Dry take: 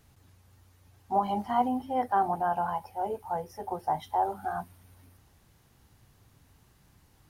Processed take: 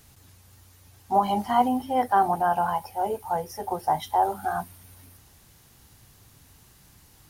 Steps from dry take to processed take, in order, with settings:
high-shelf EQ 3,100 Hz +9 dB
level +4.5 dB

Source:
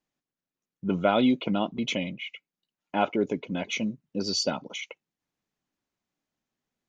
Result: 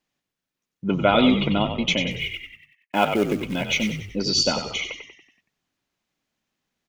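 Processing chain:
0:02.11–0:04.06: log-companded quantiser 6 bits
parametric band 2,900 Hz +5 dB 2.1 octaves
echo with shifted repeats 94 ms, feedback 48%, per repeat −55 Hz, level −7.5 dB
level +3.5 dB

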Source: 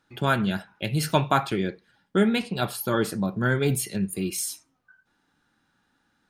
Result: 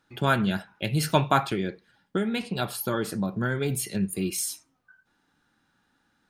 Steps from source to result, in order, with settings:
0:01.43–0:03.91: downward compressor 6 to 1, threshold −23 dBFS, peak gain reduction 8 dB

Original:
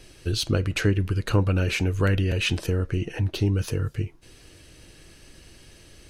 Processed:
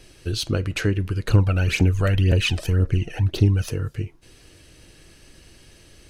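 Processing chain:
0:01.28–0:03.69: phase shifter 1.9 Hz, delay 1.7 ms, feedback 61%

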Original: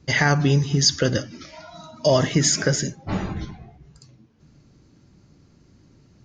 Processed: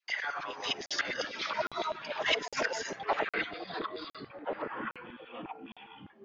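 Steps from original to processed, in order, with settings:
noise gate −42 dBFS, range −26 dB
low-shelf EQ 150 Hz −10 dB
compressor whose output falls as the input rises −32 dBFS, ratio −1
0:03.19–0:03.59: phaser with its sweep stopped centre 2,300 Hz, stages 4
all-pass dispersion lows, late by 43 ms, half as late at 580 Hz
auto-filter high-pass saw down 9.9 Hz 470–3,100 Hz
high-frequency loss of the air 160 metres
delay with pitch and tempo change per echo 103 ms, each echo −6 semitones, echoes 3, each echo −6 dB
regular buffer underruns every 0.81 s, samples 2,048, zero, from 0:00.86

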